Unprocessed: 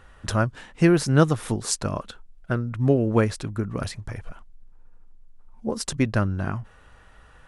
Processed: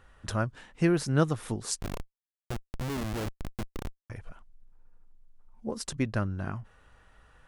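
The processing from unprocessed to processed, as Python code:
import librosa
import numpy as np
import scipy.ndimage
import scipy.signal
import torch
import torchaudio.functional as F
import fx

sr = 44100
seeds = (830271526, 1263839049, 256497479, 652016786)

y = fx.schmitt(x, sr, flips_db=-23.0, at=(1.81, 4.1))
y = y * 10.0 ** (-7.0 / 20.0)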